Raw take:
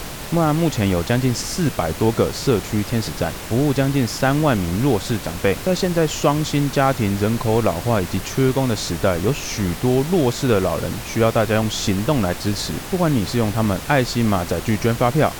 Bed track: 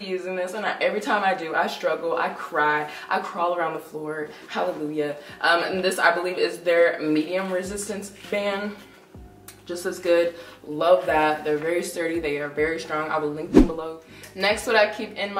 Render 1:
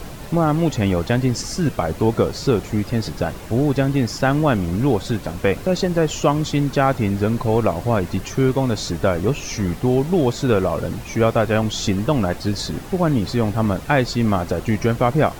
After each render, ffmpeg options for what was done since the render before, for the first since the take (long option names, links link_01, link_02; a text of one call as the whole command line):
ffmpeg -i in.wav -af "afftdn=noise_reduction=9:noise_floor=-31" out.wav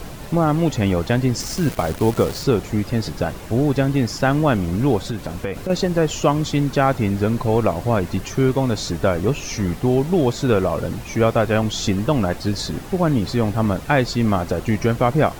ffmpeg -i in.wav -filter_complex "[0:a]asettb=1/sr,asplit=3[link_01][link_02][link_03];[link_01]atrim=end=1.404[link_04];[link_02]atrim=start=1.4:end=2.44,asetpts=PTS-STARTPTS,afade=type=in:duration=0.004:curve=qsin,afade=type=out:start_time=1.036:duration=0.004:curve=qsin,acrusher=bits=6:dc=4:mix=0:aa=0.000001[link_05];[link_03]atrim=start=2.436[link_06];[link_04][link_05]acrossfade=duration=0.004:curve1=hsin:curve2=qsin[link_07];[link_07][link_06]acrossfade=duration=0.004:curve1=qsin:curve2=hsin,asettb=1/sr,asplit=3[link_08][link_09][link_10];[link_08]atrim=end=5.094[link_11];[link_09]atrim=start=5.09:end=5.7,asetpts=PTS-STARTPTS,afade=type=in:duration=0.004:curve=qsin,afade=type=out:start_time=0.606:duration=0.004:curve=qsin,acompressor=threshold=-20dB:ratio=6:attack=3.2:release=140:knee=1:detection=peak[link_12];[link_10]atrim=start=5.696[link_13];[link_11][link_12]acrossfade=duration=0.004:curve1=hsin:curve2=qsin[link_14];[link_14][link_13]acrossfade=duration=0.004:curve1=qsin:curve2=hsin" out.wav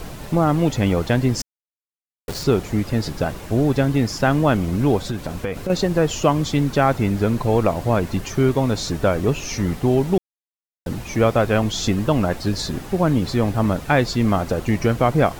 ffmpeg -i in.wav -filter_complex "[0:a]asplit=5[link_01][link_02][link_03][link_04][link_05];[link_01]atrim=end=1.42,asetpts=PTS-STARTPTS,afade=type=out:start_time=1.416:duration=0.004:curve=hsin[link_06];[link_02]atrim=start=1.42:end=2.28,asetpts=PTS-STARTPTS,volume=0[link_07];[link_03]atrim=start=2.28:end=10.18,asetpts=PTS-STARTPTS,afade=type=in:duration=0.004:curve=hsin,afade=type=out:start_time=7.896:duration=0.004:curve=hsin[link_08];[link_04]atrim=start=10.18:end=10.86,asetpts=PTS-STARTPTS,volume=0[link_09];[link_05]atrim=start=10.86,asetpts=PTS-STARTPTS,afade=type=in:duration=0.004:curve=hsin[link_10];[link_06][link_07][link_08][link_09][link_10]concat=n=5:v=0:a=1" out.wav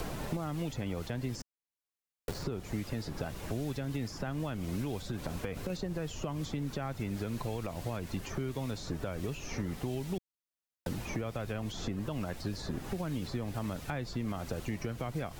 ffmpeg -i in.wav -filter_complex "[0:a]alimiter=limit=-14.5dB:level=0:latency=1:release=426,acrossover=split=190|2000[link_01][link_02][link_03];[link_01]acompressor=threshold=-39dB:ratio=4[link_04];[link_02]acompressor=threshold=-39dB:ratio=4[link_05];[link_03]acompressor=threshold=-49dB:ratio=4[link_06];[link_04][link_05][link_06]amix=inputs=3:normalize=0" out.wav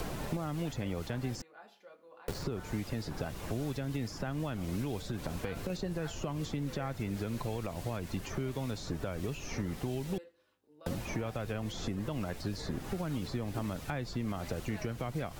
ffmpeg -i in.wav -i bed.wav -filter_complex "[1:a]volume=-31.5dB[link_01];[0:a][link_01]amix=inputs=2:normalize=0" out.wav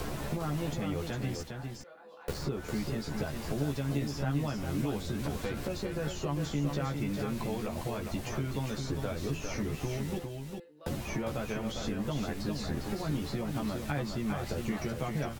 ffmpeg -i in.wav -filter_complex "[0:a]asplit=2[link_01][link_02];[link_02]adelay=14,volume=-3dB[link_03];[link_01][link_03]amix=inputs=2:normalize=0,asplit=2[link_04][link_05];[link_05]aecho=0:1:404:0.531[link_06];[link_04][link_06]amix=inputs=2:normalize=0" out.wav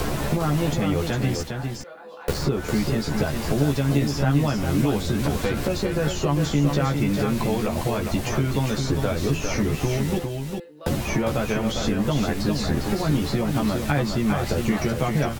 ffmpeg -i in.wav -af "volume=11dB" out.wav